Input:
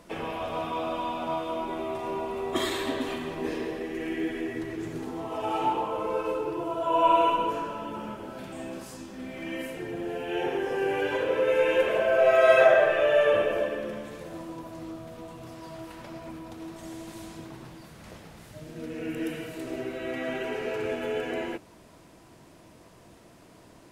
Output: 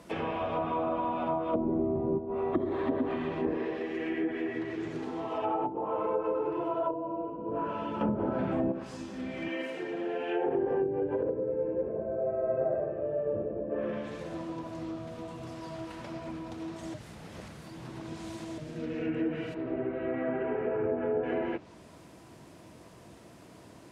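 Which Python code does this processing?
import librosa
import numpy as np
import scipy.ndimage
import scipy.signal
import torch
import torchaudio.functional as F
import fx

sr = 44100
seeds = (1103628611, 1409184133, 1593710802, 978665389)

y = fx.env_flatten(x, sr, amount_pct=50, at=(1.53, 2.17), fade=0.02)
y = fx.low_shelf(y, sr, hz=200.0, db=-8.5, at=(3.57, 7.49))
y = fx.highpass(y, sr, hz=300.0, slope=12, at=(9.48, 10.48))
y = fx.lowpass(y, sr, hz=2300.0, slope=12, at=(11.23, 12.74))
y = fx.lowpass(y, sr, hz=1600.0, slope=12, at=(19.53, 21.22), fade=0.02)
y = fx.edit(y, sr, fx.clip_gain(start_s=8.01, length_s=0.71, db=8.5),
    fx.reverse_span(start_s=16.94, length_s=1.64), tone=tone)
y = scipy.signal.sosfilt(scipy.signal.butter(2, 58.0, 'highpass', fs=sr, output='sos'), y)
y = fx.low_shelf(y, sr, hz=380.0, db=2.5)
y = fx.env_lowpass_down(y, sr, base_hz=310.0, full_db=-22.0)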